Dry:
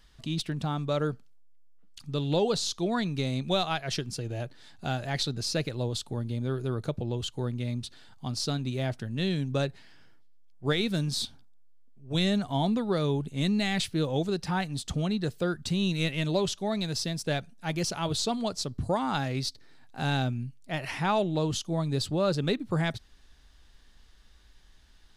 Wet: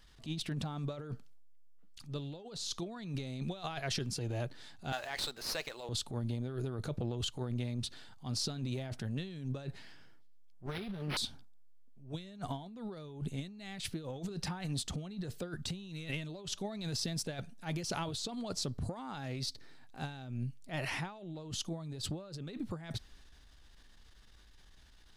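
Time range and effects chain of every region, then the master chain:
0:04.92–0:05.89: high-pass filter 750 Hz + windowed peak hold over 3 samples
0:10.66–0:11.17: lower of the sound and its delayed copy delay 5.1 ms + linearly interpolated sample-rate reduction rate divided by 6×
whole clip: transient designer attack −9 dB, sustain +3 dB; compressor whose output falls as the input rises −33 dBFS, ratio −0.5; level −5 dB

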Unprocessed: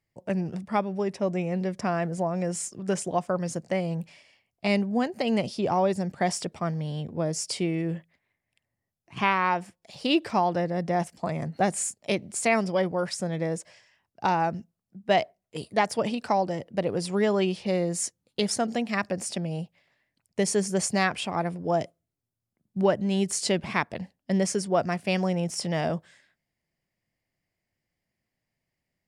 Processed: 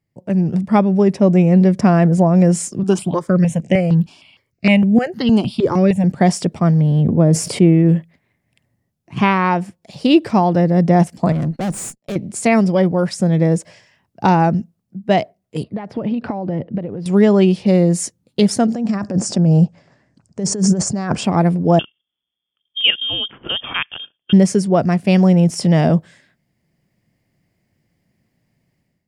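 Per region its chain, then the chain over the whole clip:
0:02.83–0:06.04: parametric band 2,800 Hz +7.5 dB 1 octave + step-sequenced phaser 6.5 Hz 540–4,400 Hz
0:06.81–0:07.86: parametric band 5,600 Hz −11 dB 1.8 octaves + level that may fall only so fast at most 28 dB per second
0:11.32–0:12.16: high-pass filter 61 Hz + noise gate −46 dBFS, range −21 dB + tube saturation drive 33 dB, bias 0.6
0:15.63–0:17.06: downward compressor 16 to 1, threshold −34 dBFS + high-frequency loss of the air 340 metres
0:18.74–0:21.24: Butterworth low-pass 8,100 Hz + flat-topped bell 2,800 Hz −9.5 dB 1.3 octaves + compressor whose output falls as the input rises −33 dBFS
0:21.79–0:24.33: output level in coarse steps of 10 dB + voice inversion scrambler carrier 3,400 Hz
whole clip: parametric band 170 Hz +11 dB 2.7 octaves; automatic gain control; level −1 dB

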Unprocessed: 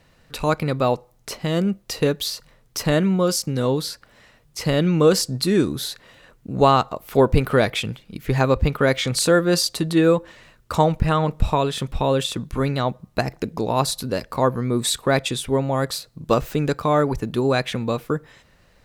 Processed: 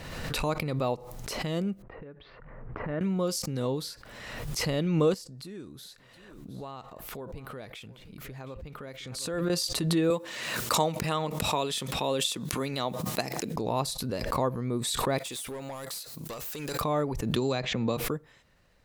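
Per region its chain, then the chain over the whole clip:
0:01.82–0:03.01: low-pass filter 2,100 Hz 24 dB per octave + low-pass that shuts in the quiet parts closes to 1,400 Hz, open at −16 dBFS + downward compressor 20 to 1, threshold −32 dBFS
0:05.14–0:09.50: downward compressor 2 to 1, threshold −42 dBFS + single-tap delay 714 ms −18.5 dB
0:10.10–0:13.56: high-pass filter 180 Hz + high-shelf EQ 2,600 Hz +9.5 dB
0:15.18–0:16.81: RIAA equalisation recording + downward compressor 10 to 1, threshold −21 dBFS + gain into a clipping stage and back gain 24.5 dB
0:17.36–0:17.97: Chebyshev low-pass filter 7,300 Hz, order 5 + multiband upward and downward compressor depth 100%
whole clip: dynamic equaliser 1,500 Hz, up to −6 dB, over −42 dBFS, Q 3.6; background raised ahead of every attack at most 35 dB per second; level −9.5 dB

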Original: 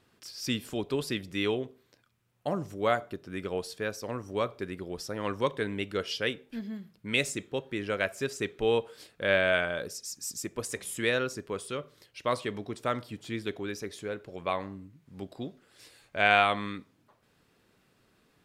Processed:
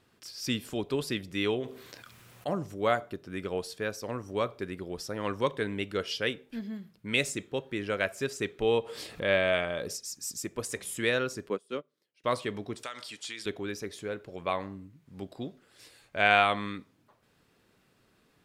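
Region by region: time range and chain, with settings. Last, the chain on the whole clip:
0:01.60–0:02.49: low-shelf EQ 430 Hz −7 dB + notch filter 880 Hz, Q 26 + envelope flattener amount 50%
0:08.62–0:09.97: high-shelf EQ 8,900 Hz −4.5 dB + notch filter 1,500 Hz, Q 8 + upward compression, threshold −29 dBFS
0:11.49–0:12.24: high-pass filter 190 Hz 24 dB per octave + low-shelf EQ 450 Hz +8 dB + expander for the loud parts 2.5 to 1, over −42 dBFS
0:12.83–0:13.46: meter weighting curve ITU-R 468 + downward compressor 8 to 1, threshold −34 dBFS
whole clip: no processing

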